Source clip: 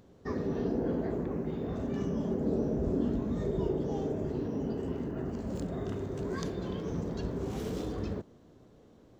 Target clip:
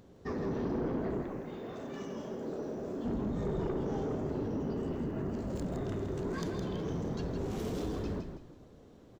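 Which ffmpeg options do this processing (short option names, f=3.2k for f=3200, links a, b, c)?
-filter_complex "[0:a]asettb=1/sr,asplit=3[a][b][c];[a]atrim=end=1.224[d];[b]atrim=start=1.22:end=3.05,asetpts=PTS-STARTPTS,afade=t=in:d=0.004:c=qsin,afade=t=out:st=1.826:d=0.004:c=qsin,highpass=f=780:p=1[e];[c]atrim=start=3.046[f];[d][e]acrossfade=d=0.004:c1=hsin:c2=qsin[g];[g][f]acrossfade=d=0.004:c1=qsin:c2=hsin,asoftclip=type=tanh:threshold=-31dB,asplit=2[h][i];[i]asplit=4[j][k][l][m];[j]adelay=163,afreqshift=-37,volume=-7dB[n];[k]adelay=326,afreqshift=-74,volume=-17.2dB[o];[l]adelay=489,afreqshift=-111,volume=-27.3dB[p];[m]adelay=652,afreqshift=-148,volume=-37.5dB[q];[n][o][p][q]amix=inputs=4:normalize=0[r];[h][r]amix=inputs=2:normalize=0,volume=1dB"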